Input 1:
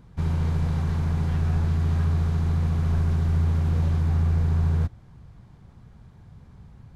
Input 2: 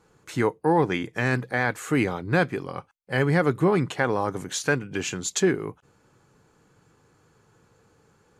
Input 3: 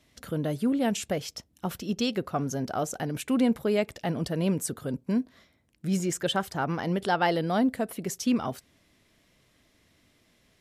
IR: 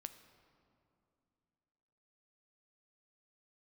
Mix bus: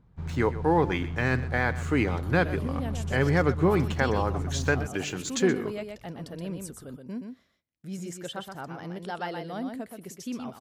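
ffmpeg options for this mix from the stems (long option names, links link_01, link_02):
-filter_complex "[0:a]lowpass=frequency=2400:poles=1,volume=-10dB[link_01];[1:a]lowpass=6400,aeval=exprs='sgn(val(0))*max(abs(val(0))-0.00299,0)':channel_layout=same,volume=-2dB,asplit=2[link_02][link_03];[link_03]volume=-15.5dB[link_04];[2:a]agate=range=-14dB:threshold=-57dB:ratio=16:detection=peak,adelay=2000,volume=-10dB,asplit=2[link_05][link_06];[link_06]volume=-5.5dB[link_07];[link_04][link_07]amix=inputs=2:normalize=0,aecho=0:1:124:1[link_08];[link_01][link_02][link_05][link_08]amix=inputs=4:normalize=0"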